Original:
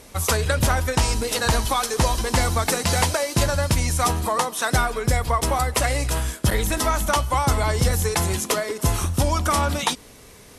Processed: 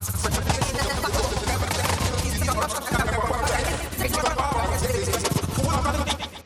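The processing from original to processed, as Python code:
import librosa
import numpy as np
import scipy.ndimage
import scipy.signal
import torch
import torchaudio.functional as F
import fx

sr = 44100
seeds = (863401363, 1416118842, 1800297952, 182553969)

p1 = fx.stretch_grains(x, sr, factor=0.61, grain_ms=80.0)
p2 = fx.granulator(p1, sr, seeds[0], grain_ms=100.0, per_s=20.0, spray_ms=100.0, spread_st=3)
p3 = p2 + fx.echo_bbd(p2, sr, ms=128, stages=4096, feedback_pct=35, wet_db=-6.5, dry=0)
p4 = fx.rider(p3, sr, range_db=4, speed_s=0.5)
y = scipy.signal.sosfilt(scipy.signal.butter(2, 70.0, 'highpass', fs=sr, output='sos'), p4)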